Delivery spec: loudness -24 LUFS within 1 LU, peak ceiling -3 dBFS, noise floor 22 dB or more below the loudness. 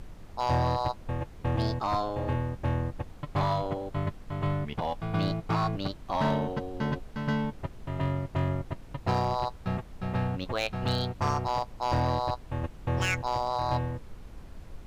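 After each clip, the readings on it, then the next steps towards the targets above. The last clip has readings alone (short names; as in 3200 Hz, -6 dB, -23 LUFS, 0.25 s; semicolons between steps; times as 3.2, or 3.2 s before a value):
clipped 0.8%; flat tops at -20.0 dBFS; noise floor -47 dBFS; noise floor target -53 dBFS; loudness -31.0 LUFS; peak -20.0 dBFS; loudness target -24.0 LUFS
-> clip repair -20 dBFS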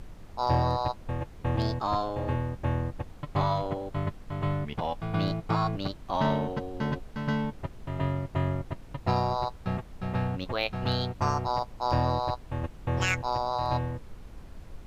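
clipped 0.0%; noise floor -47 dBFS; noise floor target -53 dBFS
-> noise print and reduce 6 dB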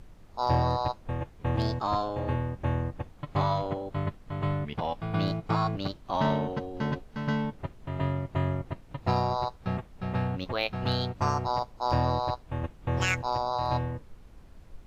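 noise floor -52 dBFS; noise floor target -53 dBFS
-> noise print and reduce 6 dB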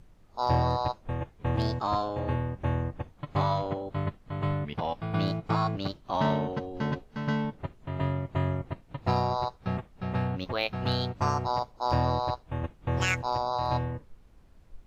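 noise floor -57 dBFS; loudness -30.5 LUFS; peak -11.5 dBFS; loudness target -24.0 LUFS
-> gain +6.5 dB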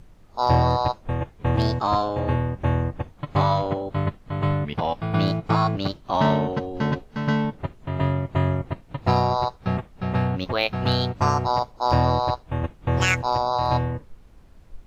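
loudness -24.0 LUFS; peak -5.0 dBFS; noise floor -51 dBFS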